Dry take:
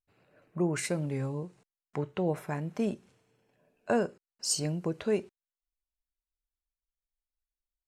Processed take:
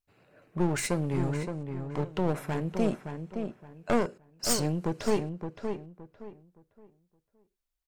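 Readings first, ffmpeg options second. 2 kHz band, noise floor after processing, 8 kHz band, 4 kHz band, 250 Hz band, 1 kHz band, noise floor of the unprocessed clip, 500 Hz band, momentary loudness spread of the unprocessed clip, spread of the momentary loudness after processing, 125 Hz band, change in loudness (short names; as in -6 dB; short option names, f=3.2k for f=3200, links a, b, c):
+2.0 dB, -84 dBFS, +1.0 dB, +2.0 dB, +3.0 dB, +4.5 dB, under -85 dBFS, +1.5 dB, 11 LU, 14 LU, +3.5 dB, +1.0 dB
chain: -filter_complex "[0:a]aeval=exprs='clip(val(0),-1,0.0158)':c=same,asplit=2[a][b];[b]adelay=568,lowpass=f=2.2k:p=1,volume=-6.5dB,asplit=2[c][d];[d]adelay=568,lowpass=f=2.2k:p=1,volume=0.28,asplit=2[e][f];[f]adelay=568,lowpass=f=2.2k:p=1,volume=0.28,asplit=2[g][h];[h]adelay=568,lowpass=f=2.2k:p=1,volume=0.28[i];[c][e][g][i]amix=inputs=4:normalize=0[j];[a][j]amix=inputs=2:normalize=0,volume=4dB"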